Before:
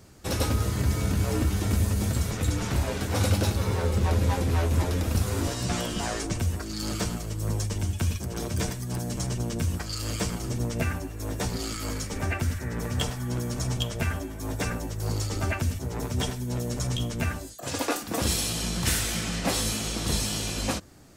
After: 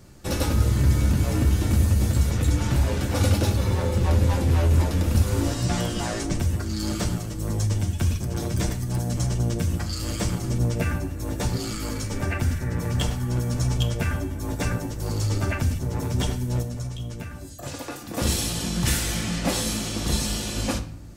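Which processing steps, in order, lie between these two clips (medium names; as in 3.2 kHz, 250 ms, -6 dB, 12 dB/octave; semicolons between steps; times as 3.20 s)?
bass shelf 220 Hz +5.5 dB; 16.62–18.17 s: compression 6:1, threshold -32 dBFS, peak gain reduction 12.5 dB; reverberation RT60 0.65 s, pre-delay 3 ms, DRR 6.5 dB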